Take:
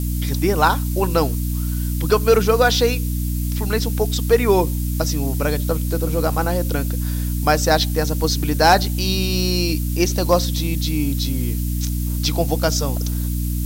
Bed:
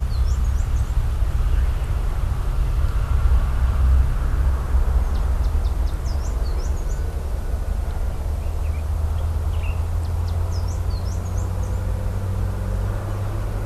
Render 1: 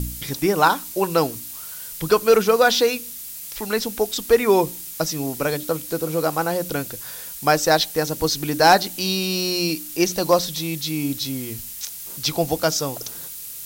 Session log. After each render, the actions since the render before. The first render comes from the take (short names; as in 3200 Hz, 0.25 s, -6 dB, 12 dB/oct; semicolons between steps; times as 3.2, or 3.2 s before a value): de-hum 60 Hz, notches 5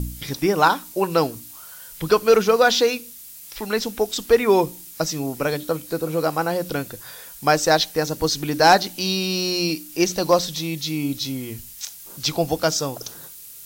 noise print and reduce 6 dB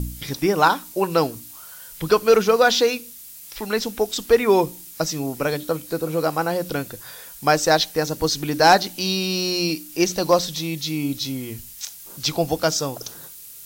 nothing audible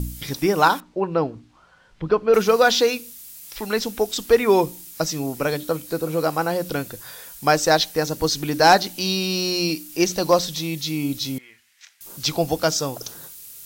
0.8–2.34 tape spacing loss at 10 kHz 37 dB; 11.38–12.01 band-pass 1900 Hz, Q 2.5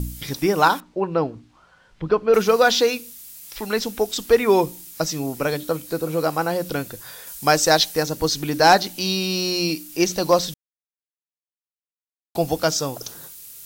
7.27–8.03 bell 9600 Hz +5 dB 2.4 oct; 10.54–12.35 mute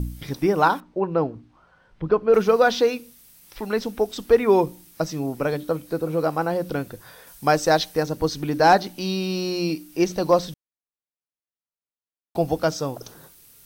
high shelf 2300 Hz -11 dB; notch 7100 Hz, Q 11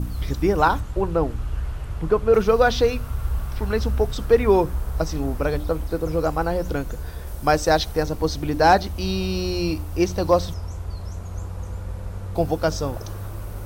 add bed -7.5 dB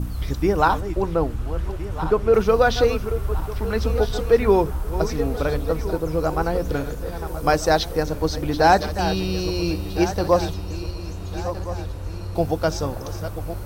regenerating reverse delay 0.682 s, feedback 64%, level -11 dB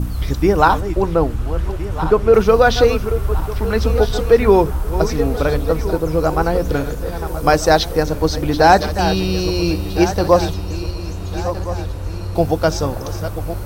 gain +5.5 dB; limiter -1 dBFS, peak gain reduction 1.5 dB